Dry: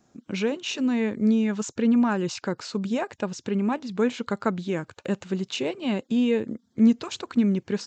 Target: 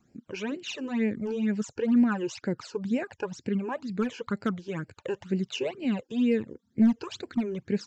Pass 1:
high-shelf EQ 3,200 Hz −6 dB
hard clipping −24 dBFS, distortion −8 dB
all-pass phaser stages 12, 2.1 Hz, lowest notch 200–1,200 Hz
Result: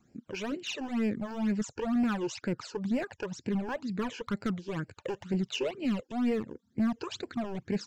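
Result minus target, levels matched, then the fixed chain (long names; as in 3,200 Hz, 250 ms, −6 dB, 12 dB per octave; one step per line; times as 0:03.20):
hard clipping: distortion +12 dB
high-shelf EQ 3,200 Hz −6 dB
hard clipping −15.5 dBFS, distortion −20 dB
all-pass phaser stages 12, 2.1 Hz, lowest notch 200–1,200 Hz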